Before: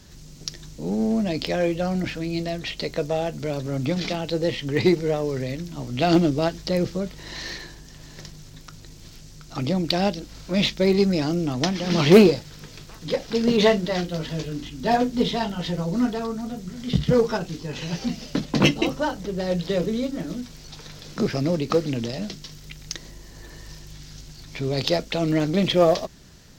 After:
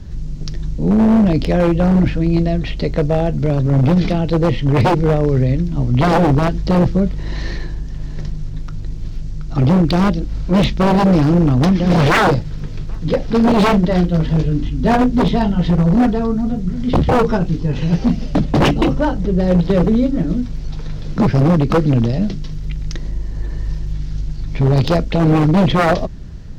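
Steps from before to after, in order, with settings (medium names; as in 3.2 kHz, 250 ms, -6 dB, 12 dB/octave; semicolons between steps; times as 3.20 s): RIAA curve playback; wavefolder -12 dBFS; trim +5 dB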